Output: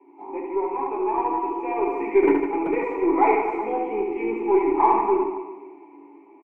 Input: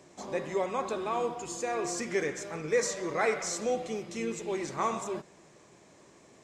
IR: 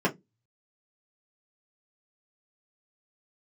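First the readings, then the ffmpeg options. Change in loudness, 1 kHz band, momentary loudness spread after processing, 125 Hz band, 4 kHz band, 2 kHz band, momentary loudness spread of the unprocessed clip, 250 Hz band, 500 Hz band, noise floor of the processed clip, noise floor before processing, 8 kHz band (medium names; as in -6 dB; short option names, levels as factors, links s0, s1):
+9.5 dB, +13.0 dB, 10 LU, no reading, under -15 dB, +2.5 dB, 7 LU, +13.0 dB, +9.0 dB, -50 dBFS, -58 dBFS, under -35 dB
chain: -filter_complex "[0:a]asplit=3[s0][s1][s2];[s0]bandpass=f=300:t=q:w=8,volume=1[s3];[s1]bandpass=f=870:t=q:w=8,volume=0.501[s4];[s2]bandpass=f=2240:t=q:w=8,volume=0.355[s5];[s3][s4][s5]amix=inputs=3:normalize=0,acrossover=split=310|1500[s6][s7][s8];[s6]acrusher=bits=6:mix=0:aa=0.000001[s9];[s9][s7][s8]amix=inputs=3:normalize=0,acontrast=80,bandreject=f=1600:w=6.1,aecho=1:1:70|154|254.8|375.8|520.9:0.631|0.398|0.251|0.158|0.1[s10];[1:a]atrim=start_sample=2205,asetrate=41013,aresample=44100[s11];[s10][s11]afir=irnorm=-1:irlink=0,dynaudnorm=f=250:g=11:m=3.98,highpass=180,bass=f=250:g=-9,treble=f=4000:g=-2,aeval=exprs='0.668*(cos(1*acos(clip(val(0)/0.668,-1,1)))-cos(1*PI/2))+0.0133*(cos(6*acos(clip(val(0)/0.668,-1,1)))-cos(6*PI/2))':c=same,firequalizer=gain_entry='entry(1700,0);entry(5000,-23);entry(8200,-11)':delay=0.05:min_phase=1,volume=0.668"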